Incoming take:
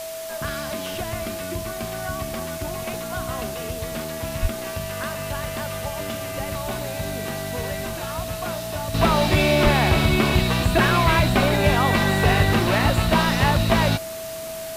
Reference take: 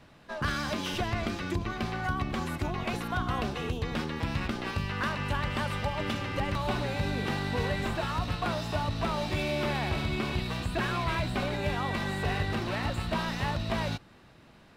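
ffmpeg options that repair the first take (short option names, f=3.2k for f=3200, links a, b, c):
-filter_complex "[0:a]bandreject=f=650:w=30,asplit=3[a][b][c];[a]afade=t=out:st=4.41:d=0.02[d];[b]highpass=f=140:w=0.5412,highpass=f=140:w=1.3066,afade=t=in:st=4.41:d=0.02,afade=t=out:st=4.53:d=0.02[e];[c]afade=t=in:st=4.53:d=0.02[f];[d][e][f]amix=inputs=3:normalize=0,asplit=3[g][h][i];[g]afade=t=out:st=9.63:d=0.02[j];[h]highpass=f=140:w=0.5412,highpass=f=140:w=1.3066,afade=t=in:st=9.63:d=0.02,afade=t=out:st=9.75:d=0.02[k];[i]afade=t=in:st=9.75:d=0.02[l];[j][k][l]amix=inputs=3:normalize=0,afwtdn=0.014,asetnsamples=n=441:p=0,asendcmd='8.94 volume volume -12dB',volume=0dB"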